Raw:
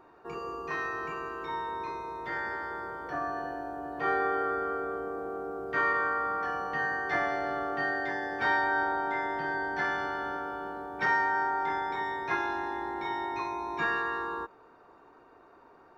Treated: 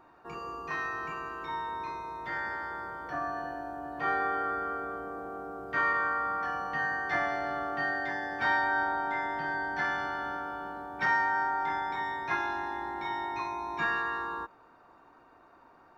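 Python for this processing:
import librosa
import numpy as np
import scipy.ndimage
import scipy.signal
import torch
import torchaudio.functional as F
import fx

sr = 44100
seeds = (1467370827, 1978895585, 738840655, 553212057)

y = fx.peak_eq(x, sr, hz=420.0, db=-8.5, octaves=0.5)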